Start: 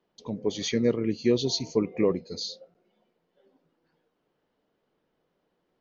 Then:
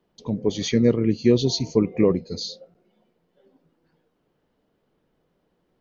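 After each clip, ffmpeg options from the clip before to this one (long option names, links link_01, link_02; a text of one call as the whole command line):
ffmpeg -i in.wav -af "lowshelf=frequency=220:gain=9.5,volume=2.5dB" out.wav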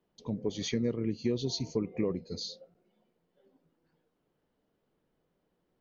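ffmpeg -i in.wav -af "acompressor=threshold=-21dB:ratio=2.5,volume=-7.5dB" out.wav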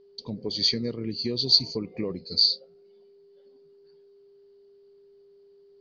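ffmpeg -i in.wav -af "aeval=exprs='val(0)+0.00224*sin(2*PI*400*n/s)':channel_layout=same,lowpass=frequency=4600:width_type=q:width=16" out.wav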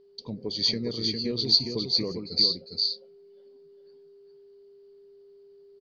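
ffmpeg -i in.wav -af "aecho=1:1:405:0.596,volume=-1.5dB" out.wav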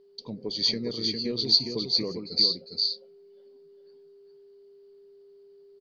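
ffmpeg -i in.wav -af "equalizer=frequency=61:width=1.2:gain=-13.5" out.wav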